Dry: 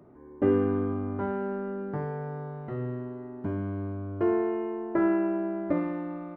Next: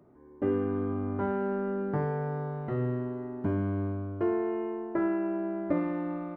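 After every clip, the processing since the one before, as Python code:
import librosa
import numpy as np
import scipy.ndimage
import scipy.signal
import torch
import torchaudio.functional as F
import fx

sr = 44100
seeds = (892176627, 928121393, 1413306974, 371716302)

y = fx.rider(x, sr, range_db=4, speed_s=0.5)
y = F.gain(torch.from_numpy(y), -1.0).numpy()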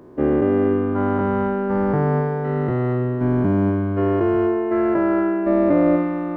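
y = fx.spec_dilate(x, sr, span_ms=480)
y = F.gain(torch.from_numpy(y), 6.5).numpy()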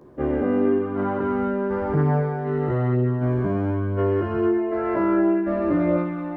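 y = fx.chorus_voices(x, sr, voices=2, hz=0.5, base_ms=14, depth_ms=2.0, mix_pct=55)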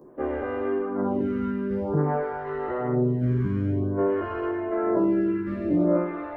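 y = fx.reverse_delay_fb(x, sr, ms=427, feedback_pct=65, wet_db=-13)
y = fx.stagger_phaser(y, sr, hz=0.51)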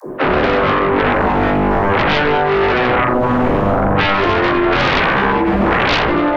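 y = fx.fold_sine(x, sr, drive_db=18, ceiling_db=-11.0)
y = fx.dispersion(y, sr, late='lows', ms=61.0, hz=420.0)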